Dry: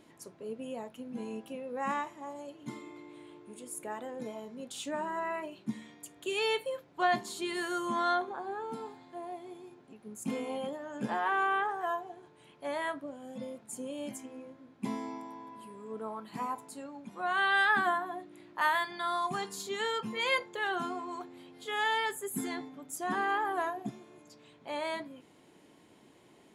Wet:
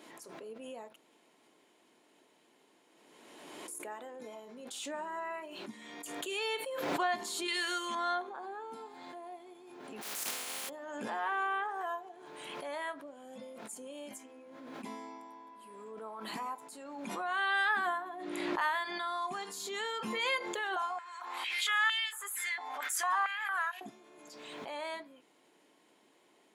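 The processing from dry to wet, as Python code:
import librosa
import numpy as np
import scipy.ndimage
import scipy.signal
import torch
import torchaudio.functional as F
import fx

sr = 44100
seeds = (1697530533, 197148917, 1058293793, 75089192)

y = fx.weighting(x, sr, curve='D', at=(7.48, 7.95))
y = fx.spec_flatten(y, sr, power=0.2, at=(10.01, 10.68), fade=0.02)
y = fx.high_shelf(y, sr, hz=12000.0, db=-11.5, at=(18.01, 19.41))
y = fx.filter_held_highpass(y, sr, hz=4.4, low_hz=860.0, high_hz=2700.0, at=(20.76, 23.81))
y = fx.edit(y, sr, fx.room_tone_fill(start_s=0.96, length_s=2.72), tone=tone)
y = scipy.signal.sosfilt(scipy.signal.butter(2, 210.0, 'highpass', fs=sr, output='sos'), y)
y = fx.low_shelf(y, sr, hz=280.0, db=-10.0)
y = fx.pre_swell(y, sr, db_per_s=28.0)
y = y * 10.0 ** (-3.5 / 20.0)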